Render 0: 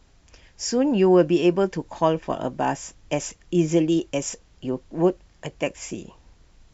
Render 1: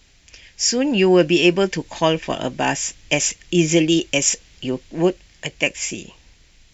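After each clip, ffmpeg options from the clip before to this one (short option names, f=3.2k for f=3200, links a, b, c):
-af "highshelf=f=1.6k:t=q:w=1.5:g=9,dynaudnorm=f=380:g=5:m=7dB"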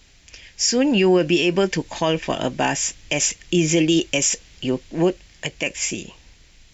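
-af "alimiter=limit=-10dB:level=0:latency=1:release=70,volume=1.5dB"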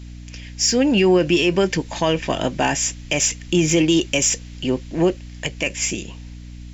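-filter_complex "[0:a]aeval=exprs='val(0)+0.0141*(sin(2*PI*60*n/s)+sin(2*PI*2*60*n/s)/2+sin(2*PI*3*60*n/s)/3+sin(2*PI*4*60*n/s)/4+sin(2*PI*5*60*n/s)/5)':c=same,asplit=2[a][b];[b]asoftclip=type=tanh:threshold=-20.5dB,volume=-11.5dB[c];[a][c]amix=inputs=2:normalize=0"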